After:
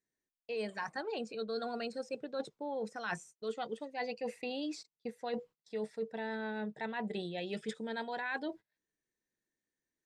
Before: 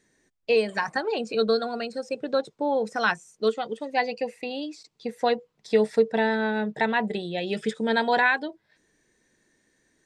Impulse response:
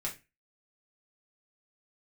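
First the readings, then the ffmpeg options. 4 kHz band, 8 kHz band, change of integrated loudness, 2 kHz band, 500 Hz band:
−12.5 dB, can't be measured, −14.0 dB, −15.0 dB, −14.0 dB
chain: -af "agate=range=-25dB:threshold=-45dB:ratio=16:detection=peak,areverse,acompressor=threshold=-35dB:ratio=12,areverse"

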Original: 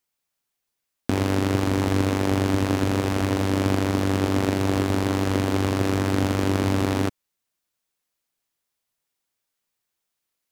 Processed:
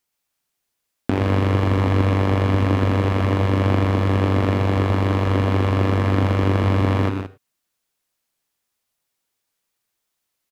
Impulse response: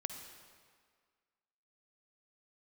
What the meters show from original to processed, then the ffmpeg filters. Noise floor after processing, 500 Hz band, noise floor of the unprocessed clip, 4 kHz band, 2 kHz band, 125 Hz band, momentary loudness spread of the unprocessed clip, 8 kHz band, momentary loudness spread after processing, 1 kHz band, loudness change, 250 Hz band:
−78 dBFS, +2.5 dB, −81 dBFS, −1.0 dB, +2.0 dB, +7.0 dB, 1 LU, below −10 dB, 2 LU, +3.5 dB, +3.5 dB, +1.0 dB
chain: -filter_complex "[0:a]acrossover=split=3500[link_01][link_02];[link_02]acompressor=threshold=-50dB:ratio=4:attack=1:release=60[link_03];[link_01][link_03]amix=inputs=2:normalize=0,aecho=1:1:122.4|174.9:0.447|0.316,asplit=2[link_04][link_05];[1:a]atrim=start_sample=2205,atrim=end_sample=3528,asetrate=30870,aresample=44100[link_06];[link_05][link_06]afir=irnorm=-1:irlink=0,volume=-3dB[link_07];[link_04][link_07]amix=inputs=2:normalize=0,volume=-2dB"

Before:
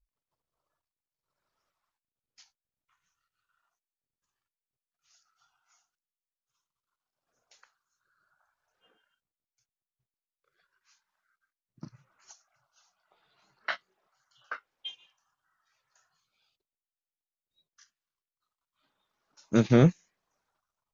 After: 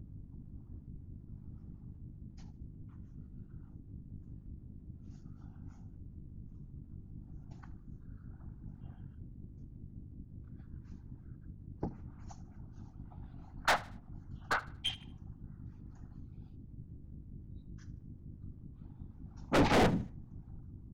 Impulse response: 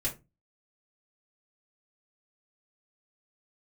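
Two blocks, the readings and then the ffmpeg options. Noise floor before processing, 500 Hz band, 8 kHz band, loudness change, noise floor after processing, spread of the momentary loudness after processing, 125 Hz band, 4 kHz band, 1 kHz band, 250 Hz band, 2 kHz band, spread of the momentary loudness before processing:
below −85 dBFS, −4.0 dB, can't be measured, −12.0 dB, −54 dBFS, 18 LU, −7.0 dB, +4.0 dB, +6.5 dB, −6.5 dB, +3.0 dB, 21 LU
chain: -filter_complex "[0:a]bandreject=frequency=60:width_type=h:width=6,bandreject=frequency=120:width_type=h:width=6,bandreject=frequency=180:width_type=h:width=6,afwtdn=0.00316,equalizer=frequency=780:width=3.5:gain=14.5,acrossover=split=560|1700[link_01][link_02][link_03];[link_02]aeval=exprs='0.15*sin(PI/2*2.24*val(0)/0.15)':channel_layout=same[link_04];[link_01][link_04][link_03]amix=inputs=3:normalize=0,aeval=exprs='val(0)+0.00224*(sin(2*PI*50*n/s)+sin(2*PI*2*50*n/s)/2+sin(2*PI*3*50*n/s)/3+sin(2*PI*4*50*n/s)/4+sin(2*PI*5*50*n/s)/5)':channel_layout=same,afftfilt=real='hypot(re,im)*cos(2*PI*random(0))':imag='hypot(re,im)*sin(2*PI*random(1))':win_size=512:overlap=0.75,aeval=exprs='(tanh(70.8*val(0)+0.2)-tanh(0.2))/70.8':channel_layout=same,acrossover=split=730[link_05][link_06];[link_05]aeval=exprs='val(0)*(1-0.5/2+0.5/2*cos(2*PI*5.3*n/s))':channel_layout=same[link_07];[link_06]aeval=exprs='val(0)*(1-0.5/2-0.5/2*cos(2*PI*5.3*n/s))':channel_layout=same[link_08];[link_07][link_08]amix=inputs=2:normalize=0,asplit=2[link_09][link_10];[link_10]aecho=0:1:77|154|231:0.1|0.035|0.0123[link_11];[link_09][link_11]amix=inputs=2:normalize=0,volume=15dB"

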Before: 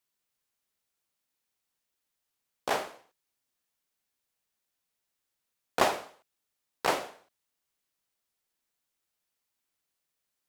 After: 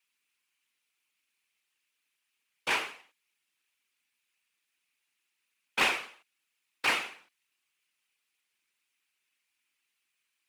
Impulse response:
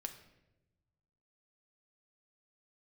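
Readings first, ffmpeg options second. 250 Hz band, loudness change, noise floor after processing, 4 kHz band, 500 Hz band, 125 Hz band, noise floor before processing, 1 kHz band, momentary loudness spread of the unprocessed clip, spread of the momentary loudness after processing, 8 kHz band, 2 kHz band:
−5.0 dB, +1.0 dB, −82 dBFS, +4.5 dB, −9.0 dB, −6.0 dB, −84 dBFS, −4.0 dB, 14 LU, 14 LU, −0.5 dB, +6.5 dB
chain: -filter_complex "[0:a]equalizer=frequency=250:width_type=o:width=0.67:gain=4,equalizer=frequency=630:width_type=o:width=0.67:gain=-10,equalizer=frequency=2500:width_type=o:width=0.67:gain=12,equalizer=frequency=10000:width_type=o:width=0.67:gain=5,afftfilt=real='hypot(re,im)*cos(2*PI*random(0))':imag='hypot(re,im)*sin(2*PI*random(1))':win_size=512:overlap=0.75,asplit=2[link_01][link_02];[link_02]highpass=frequency=720:poles=1,volume=14dB,asoftclip=type=tanh:threshold=-16dB[link_03];[link_01][link_03]amix=inputs=2:normalize=0,lowpass=frequency=4900:poles=1,volume=-6dB"

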